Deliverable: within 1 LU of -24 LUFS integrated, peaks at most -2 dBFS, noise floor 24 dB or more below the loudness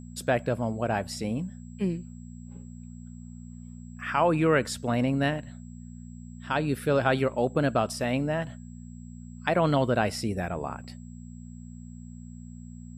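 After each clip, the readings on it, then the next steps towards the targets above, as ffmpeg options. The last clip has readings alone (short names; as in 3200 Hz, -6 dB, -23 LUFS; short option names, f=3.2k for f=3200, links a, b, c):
hum 60 Hz; harmonics up to 240 Hz; hum level -40 dBFS; steady tone 7700 Hz; tone level -59 dBFS; loudness -27.5 LUFS; peak -9.0 dBFS; loudness target -24.0 LUFS
-> -af "bandreject=f=60:t=h:w=4,bandreject=f=120:t=h:w=4,bandreject=f=180:t=h:w=4,bandreject=f=240:t=h:w=4"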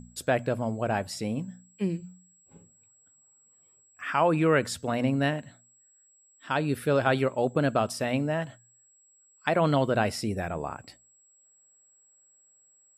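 hum none; steady tone 7700 Hz; tone level -59 dBFS
-> -af "bandreject=f=7.7k:w=30"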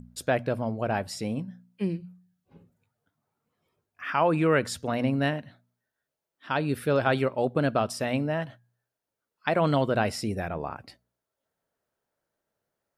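steady tone none; loudness -27.5 LUFS; peak -9.0 dBFS; loudness target -24.0 LUFS
-> -af "volume=3.5dB"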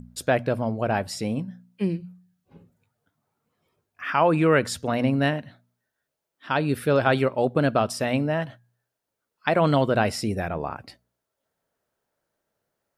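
loudness -24.0 LUFS; peak -5.5 dBFS; noise floor -83 dBFS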